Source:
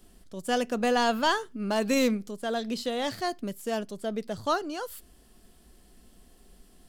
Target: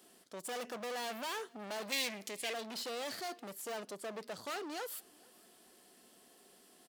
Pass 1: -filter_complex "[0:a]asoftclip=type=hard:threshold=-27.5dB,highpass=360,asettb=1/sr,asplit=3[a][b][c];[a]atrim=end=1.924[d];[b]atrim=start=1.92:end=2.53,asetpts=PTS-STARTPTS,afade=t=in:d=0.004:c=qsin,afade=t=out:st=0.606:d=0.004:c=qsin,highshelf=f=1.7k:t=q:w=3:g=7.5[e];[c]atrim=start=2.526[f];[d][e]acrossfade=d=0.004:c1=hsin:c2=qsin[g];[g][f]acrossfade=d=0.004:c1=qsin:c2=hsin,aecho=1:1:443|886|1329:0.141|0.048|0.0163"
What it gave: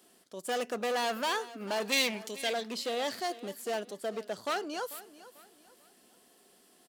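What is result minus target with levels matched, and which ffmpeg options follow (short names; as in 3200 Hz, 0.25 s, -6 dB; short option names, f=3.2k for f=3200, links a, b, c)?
echo-to-direct +10 dB; hard clip: distortion -5 dB
-filter_complex "[0:a]asoftclip=type=hard:threshold=-38dB,highpass=360,asettb=1/sr,asplit=3[a][b][c];[a]atrim=end=1.924[d];[b]atrim=start=1.92:end=2.53,asetpts=PTS-STARTPTS,afade=t=in:d=0.004:c=qsin,afade=t=out:st=0.606:d=0.004:c=qsin,highshelf=f=1.7k:t=q:w=3:g=7.5[e];[c]atrim=start=2.526[f];[d][e]acrossfade=d=0.004:c1=hsin:c2=qsin[g];[g][f]acrossfade=d=0.004:c1=qsin:c2=hsin,aecho=1:1:443|886:0.0447|0.0152"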